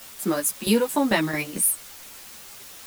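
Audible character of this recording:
tremolo saw down 4.5 Hz, depth 70%
a quantiser's noise floor 8 bits, dither triangular
a shimmering, thickened sound

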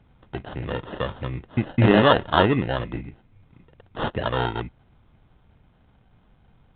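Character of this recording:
aliases and images of a low sample rate 2,300 Hz, jitter 0%
mu-law

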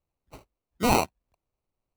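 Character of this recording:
aliases and images of a low sample rate 1,700 Hz, jitter 0%

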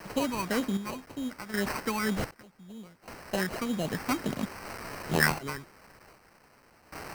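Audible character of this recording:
phaser sweep stages 6, 1.9 Hz, lowest notch 490–1,800 Hz
a quantiser's noise floor 8 bits, dither triangular
sample-and-hold tremolo 1.3 Hz, depth 95%
aliases and images of a low sample rate 3,500 Hz, jitter 0%

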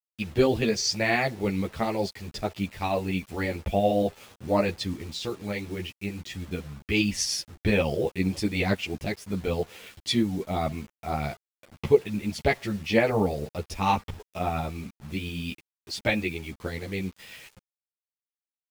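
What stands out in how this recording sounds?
tremolo saw up 8.7 Hz, depth 35%
a quantiser's noise floor 8 bits, dither none
a shimmering, thickened sound

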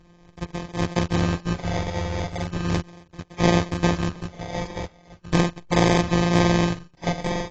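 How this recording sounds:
a buzz of ramps at a fixed pitch in blocks of 256 samples
phaser sweep stages 8, 0.37 Hz, lowest notch 250–3,400 Hz
aliases and images of a low sample rate 1,400 Hz, jitter 0%
AAC

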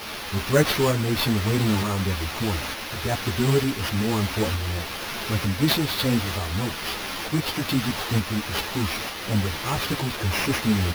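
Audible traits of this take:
a quantiser's noise floor 6 bits, dither triangular
tremolo saw up 1.1 Hz, depth 35%
aliases and images of a low sample rate 7,900 Hz, jitter 0%
a shimmering, thickened sound

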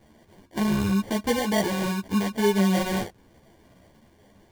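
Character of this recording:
phaser sweep stages 8, 0.84 Hz, lowest notch 680–2,600 Hz
aliases and images of a low sample rate 1,300 Hz, jitter 0%
a shimmering, thickened sound

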